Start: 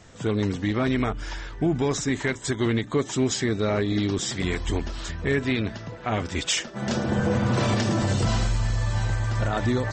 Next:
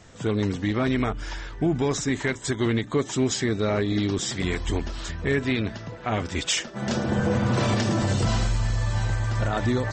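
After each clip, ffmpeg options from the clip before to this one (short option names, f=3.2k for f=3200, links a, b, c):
-af anull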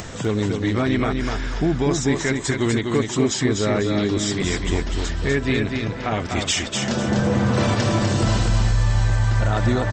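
-filter_complex "[0:a]acompressor=mode=upward:threshold=-25dB:ratio=2.5,asplit=2[a][b];[b]aecho=0:1:248|496|744|992:0.596|0.185|0.0572|0.0177[c];[a][c]amix=inputs=2:normalize=0,volume=2.5dB"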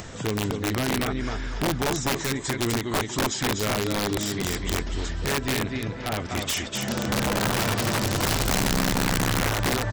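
-af "aeval=exprs='(mod(4.47*val(0)+1,2)-1)/4.47':c=same,volume=-5dB"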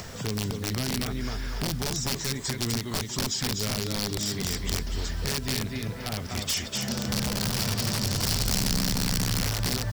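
-filter_complex "[0:a]superequalizer=6b=0.562:14b=1.78,acrossover=split=280|3000[a][b][c];[b]acompressor=threshold=-38dB:ratio=2.5[d];[a][d][c]amix=inputs=3:normalize=0,acrusher=bits=7:mix=0:aa=0.000001,volume=-1dB"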